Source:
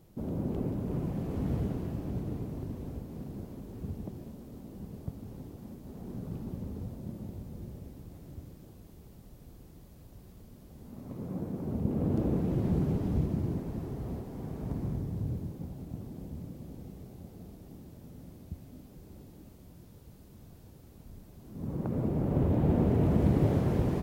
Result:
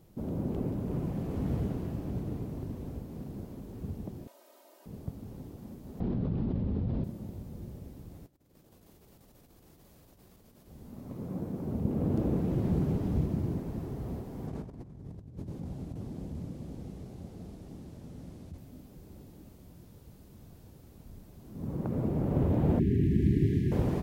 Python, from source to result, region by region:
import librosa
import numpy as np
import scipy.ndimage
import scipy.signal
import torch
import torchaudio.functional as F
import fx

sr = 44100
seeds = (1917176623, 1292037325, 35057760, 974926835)

y = fx.chain(x, sr, fx.highpass(hz=570.0, slope=24),
    fx.comb(ms=3.2, depth=0.82), at=(4.27, 4.86))
y = fx.chain(y, sr, fx.cheby2_lowpass(hz=9200.0, order=4, stop_db=50),
    fx.low_shelf(hz=360.0, db=5.5),
    fx.env_flatten(amount_pct=100), at=(6.0, 7.04))
y = fx.chain(y, sr, fx.low_shelf(hz=270.0, db=-10.0),
    fx.over_compress(threshold_db=-59.0, ratio=-0.5), at=(8.26, 10.67))
y = fx.chain(y, sr, fx.lowpass(hz=9500.0, slope=12),
    fx.over_compress(threshold_db=-39.0, ratio=-0.5), at=(14.47, 18.58))
y = fx.chain(y, sr, fx.brickwall_bandstop(low_hz=430.0, high_hz=1600.0),
    fx.high_shelf(hz=4500.0, db=-6.0), at=(22.79, 23.72))